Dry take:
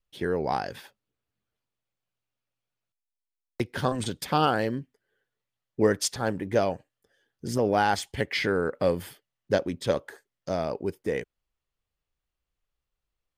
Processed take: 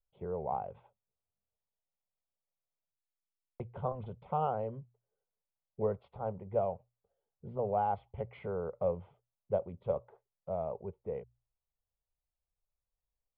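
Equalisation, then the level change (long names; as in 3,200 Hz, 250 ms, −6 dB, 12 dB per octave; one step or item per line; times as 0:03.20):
Gaussian smoothing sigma 4.9 samples
mains-hum notches 60/120 Hz
phaser with its sweep stopped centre 710 Hz, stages 4
−5.0 dB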